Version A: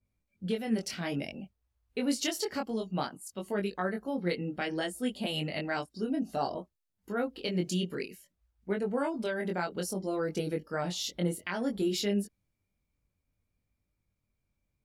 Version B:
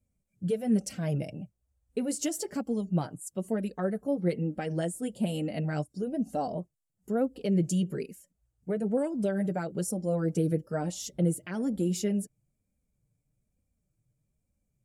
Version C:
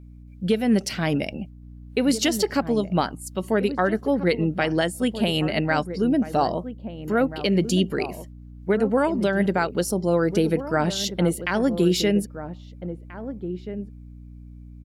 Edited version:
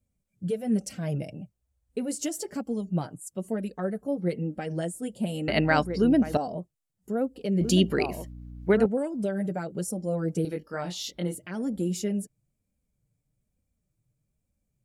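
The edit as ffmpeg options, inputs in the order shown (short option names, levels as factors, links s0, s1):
-filter_complex "[2:a]asplit=2[s0][s1];[1:a]asplit=4[s2][s3][s4][s5];[s2]atrim=end=5.482[s6];[s0]atrim=start=5.478:end=6.372[s7];[s3]atrim=start=6.368:end=7.612[s8];[s1]atrim=start=7.608:end=8.862[s9];[s4]atrim=start=8.858:end=10.452[s10];[0:a]atrim=start=10.448:end=11.352[s11];[s5]atrim=start=11.348[s12];[s6][s7]acrossfade=d=0.004:c1=hsin:c2=hsin[s13];[s13][s8]acrossfade=d=0.004:c1=hsin:c2=hsin[s14];[s14][s9]acrossfade=d=0.004:c1=hsin:c2=hsin[s15];[s15][s10]acrossfade=d=0.004:c1=hsin:c2=hsin[s16];[s16][s11]acrossfade=d=0.004:c1=hsin:c2=hsin[s17];[s17][s12]acrossfade=d=0.004:c1=hsin:c2=hsin"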